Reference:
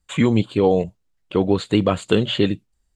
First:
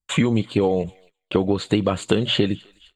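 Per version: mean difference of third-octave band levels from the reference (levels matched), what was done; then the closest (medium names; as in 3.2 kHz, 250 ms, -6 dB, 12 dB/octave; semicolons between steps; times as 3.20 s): 2.5 dB: compression 10:1, threshold -21 dBFS, peak gain reduction 10.5 dB; on a send: thinning echo 257 ms, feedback 70%, high-pass 1.2 kHz, level -24 dB; on the sum: gate -56 dBFS, range -23 dB; trim +6 dB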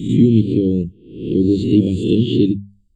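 11.0 dB: reverse spectral sustain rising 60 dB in 0.65 s; Chebyshev band-stop 340–3100 Hz, order 3; tilt shelf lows +8 dB, about 1.5 kHz; hum notches 50/100/150/200 Hz; trim -1.5 dB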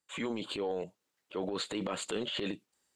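7.0 dB: high-pass 340 Hz 12 dB/octave; band-stop 690 Hz, Q 12; transient shaper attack -9 dB, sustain +10 dB; compression, threshold -26 dBFS, peak gain reduction 11.5 dB; trim -6 dB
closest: first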